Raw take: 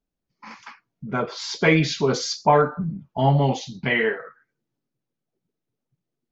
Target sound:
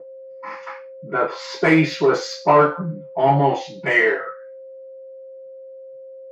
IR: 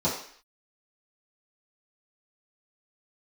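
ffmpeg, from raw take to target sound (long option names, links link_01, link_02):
-filter_complex "[0:a]asplit=2[link_01][link_02];[link_02]highpass=frequency=720:poles=1,volume=15dB,asoftclip=type=tanh:threshold=-5dB[link_03];[link_01][link_03]amix=inputs=2:normalize=0,lowpass=frequency=4000:poles=1,volume=-6dB,aeval=exprs='val(0)+0.0158*sin(2*PI*530*n/s)':channel_layout=same[link_04];[1:a]atrim=start_sample=2205,asetrate=88200,aresample=44100[link_05];[link_04][link_05]afir=irnorm=-1:irlink=0,volume=-10dB"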